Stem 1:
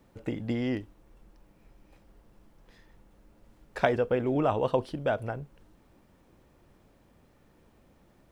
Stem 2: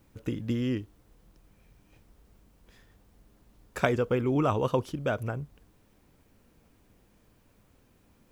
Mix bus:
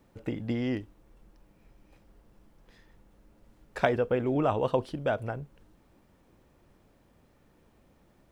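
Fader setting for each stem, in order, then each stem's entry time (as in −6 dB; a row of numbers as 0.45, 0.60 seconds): −1.5, −17.5 decibels; 0.00, 0.00 seconds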